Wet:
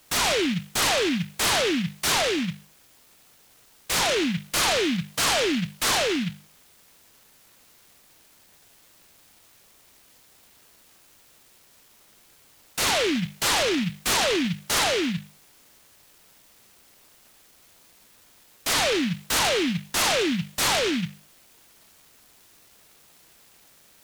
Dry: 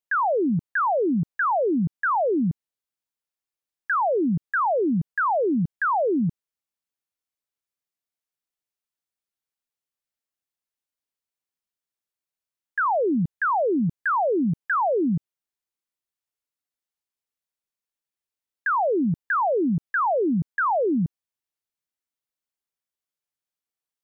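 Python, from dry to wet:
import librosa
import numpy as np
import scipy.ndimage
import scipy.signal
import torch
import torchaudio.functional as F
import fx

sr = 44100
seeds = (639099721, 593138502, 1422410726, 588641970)

p1 = fx.bin_expand(x, sr, power=3.0)
p2 = scipy.signal.sosfilt(scipy.signal.butter(4, 1600.0, 'lowpass', fs=sr, output='sos'), p1)
p3 = fx.low_shelf(p2, sr, hz=170.0, db=-9.0)
p4 = fx.hum_notches(p3, sr, base_hz=50, count=4)
p5 = fx.quant_dither(p4, sr, seeds[0], bits=8, dither='triangular')
p6 = p4 + (p5 * librosa.db_to_amplitude(-5.5))
p7 = fx.rider(p6, sr, range_db=10, speed_s=0.5)
y = fx.noise_mod_delay(p7, sr, seeds[1], noise_hz=2500.0, depth_ms=0.23)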